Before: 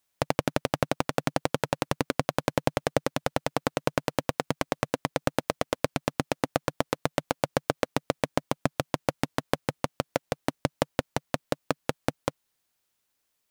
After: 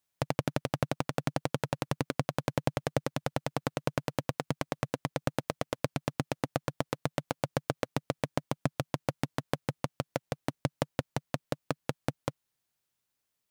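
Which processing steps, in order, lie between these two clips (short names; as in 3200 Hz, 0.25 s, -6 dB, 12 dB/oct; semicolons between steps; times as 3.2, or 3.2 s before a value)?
bell 130 Hz +7 dB 1 oct; gain -6 dB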